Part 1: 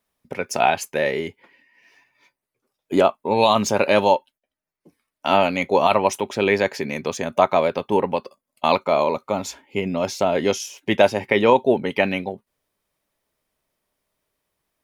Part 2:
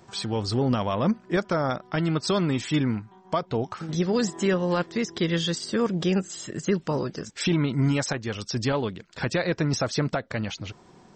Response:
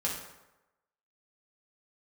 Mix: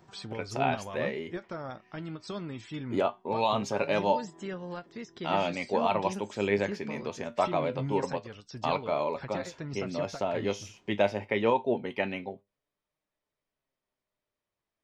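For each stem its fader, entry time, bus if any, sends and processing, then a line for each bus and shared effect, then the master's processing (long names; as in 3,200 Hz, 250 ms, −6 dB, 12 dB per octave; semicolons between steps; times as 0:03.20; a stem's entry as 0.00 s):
−3.0 dB, 0.00 s, no send, low-pass filter 9,500 Hz 12 dB per octave; tuned comb filter 100 Hz, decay 0.25 s, harmonics all, mix 40%
−1.0 dB, 0.00 s, no send, every ending faded ahead of time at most 400 dB per second; automatic ducking −8 dB, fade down 0.45 s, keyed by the first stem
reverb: not used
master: parametric band 11,000 Hz −7 dB 1.6 octaves; flanger 0.23 Hz, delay 6.4 ms, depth 3.4 ms, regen +69%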